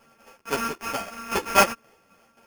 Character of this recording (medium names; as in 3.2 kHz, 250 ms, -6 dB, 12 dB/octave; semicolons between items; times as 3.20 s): a buzz of ramps at a fixed pitch in blocks of 32 samples; tremolo saw down 3.8 Hz, depth 55%; aliases and images of a low sample rate 3.9 kHz, jitter 0%; a shimmering, thickened sound